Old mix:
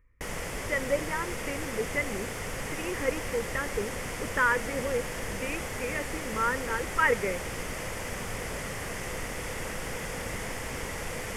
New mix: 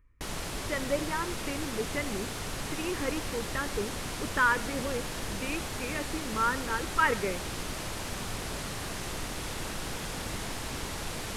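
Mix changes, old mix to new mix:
speech: send +6.5 dB; master: add thirty-one-band EQ 315 Hz +3 dB, 500 Hz -8 dB, 2000 Hz -8 dB, 4000 Hz +12 dB

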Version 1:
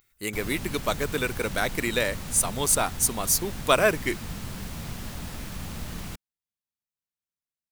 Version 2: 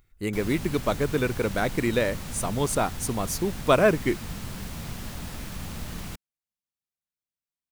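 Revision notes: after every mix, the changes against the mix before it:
speech: add tilt -3 dB/oct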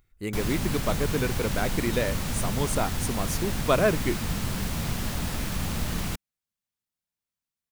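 speech -3.0 dB; background +6.5 dB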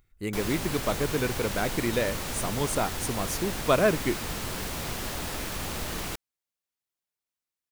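background: add resonant low shelf 270 Hz -7 dB, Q 1.5

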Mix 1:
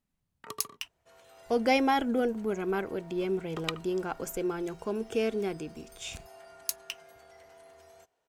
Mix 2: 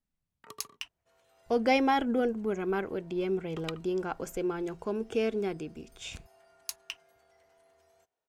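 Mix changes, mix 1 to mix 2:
speech: add high shelf 8900 Hz -11.5 dB; first sound -6.5 dB; second sound -10.5 dB

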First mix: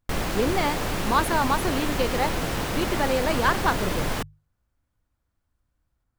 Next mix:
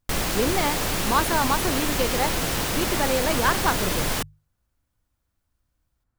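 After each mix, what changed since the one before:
background: add high shelf 3300 Hz +9.5 dB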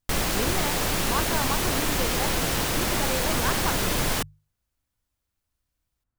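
speech -7.5 dB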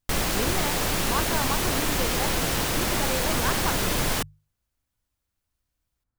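none

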